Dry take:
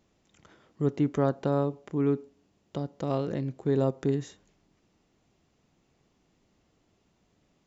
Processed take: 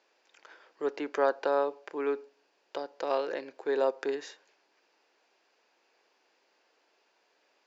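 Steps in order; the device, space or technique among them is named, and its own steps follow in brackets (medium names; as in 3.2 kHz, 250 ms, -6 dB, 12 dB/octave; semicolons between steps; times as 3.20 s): phone speaker on a table (cabinet simulation 400–6700 Hz, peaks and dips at 510 Hz +3 dB, 910 Hz +6 dB, 1.6 kHz +10 dB, 2.5 kHz +7 dB, 4.7 kHz +8 dB)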